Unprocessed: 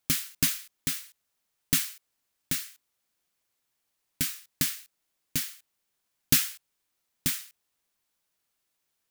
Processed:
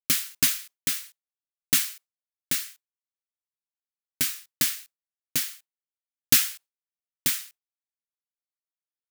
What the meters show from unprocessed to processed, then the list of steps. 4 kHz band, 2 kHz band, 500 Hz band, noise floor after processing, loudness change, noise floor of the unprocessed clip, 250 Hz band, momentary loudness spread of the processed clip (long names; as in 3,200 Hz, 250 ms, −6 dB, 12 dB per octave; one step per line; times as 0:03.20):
+4.0 dB, +4.0 dB, +2.0 dB, below −85 dBFS, +4.0 dB, −80 dBFS, −2.0 dB, 13 LU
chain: downward expander −43 dBFS
low-shelf EQ 270 Hz −11 dB
level +4 dB